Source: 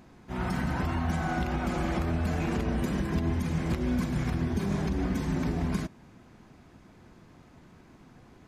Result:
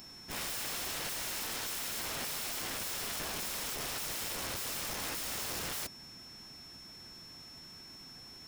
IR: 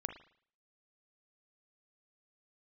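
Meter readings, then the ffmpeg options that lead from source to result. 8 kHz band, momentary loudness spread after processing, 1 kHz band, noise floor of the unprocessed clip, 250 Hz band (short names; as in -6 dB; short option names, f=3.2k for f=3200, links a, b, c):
+12.5 dB, 13 LU, -8.0 dB, -55 dBFS, -20.5 dB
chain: -af "crystalizer=i=8:c=0,aeval=exprs='(mod(25.1*val(0)+1,2)-1)/25.1':c=same,aeval=exprs='val(0)+0.00631*sin(2*PI*5400*n/s)':c=same,volume=-5.5dB"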